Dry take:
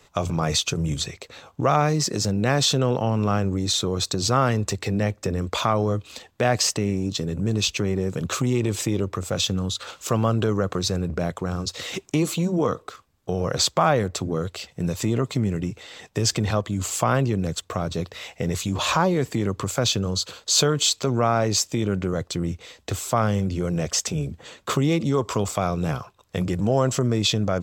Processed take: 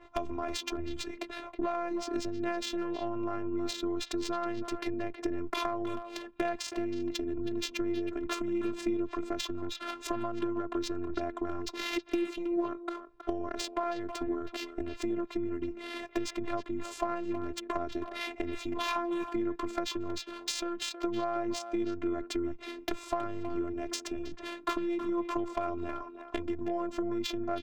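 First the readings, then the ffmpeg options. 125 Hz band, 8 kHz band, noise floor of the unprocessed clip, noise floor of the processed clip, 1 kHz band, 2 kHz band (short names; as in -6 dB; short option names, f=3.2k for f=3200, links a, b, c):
-25.5 dB, -18.5 dB, -57 dBFS, -49 dBFS, -10.0 dB, -9.5 dB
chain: -filter_complex "[0:a]highpass=45,acompressor=threshold=-33dB:ratio=10,afftfilt=real='hypot(re,im)*cos(PI*b)':imag='0':win_size=512:overlap=0.75,adynamicsmooth=sensitivity=5.5:basefreq=1.7k,asoftclip=type=hard:threshold=-25dB,asplit=2[a][b];[b]adelay=320,highpass=300,lowpass=3.4k,asoftclip=type=hard:threshold=-35dB,volume=-9dB[c];[a][c]amix=inputs=2:normalize=0,adynamicequalizer=threshold=0.00126:dfrequency=3300:dqfactor=0.7:tfrequency=3300:tqfactor=0.7:attack=5:release=100:ratio=0.375:range=1.5:mode=cutabove:tftype=highshelf,volume=8.5dB"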